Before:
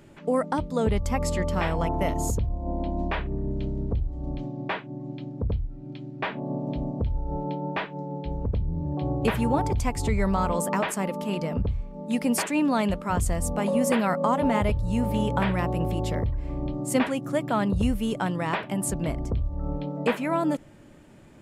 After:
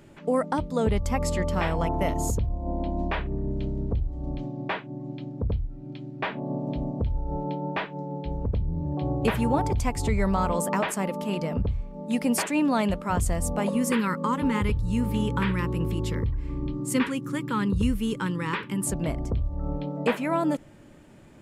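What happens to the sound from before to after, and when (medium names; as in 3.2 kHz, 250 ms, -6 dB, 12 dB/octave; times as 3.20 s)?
13.69–18.87 s: Butterworth band-stop 680 Hz, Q 1.5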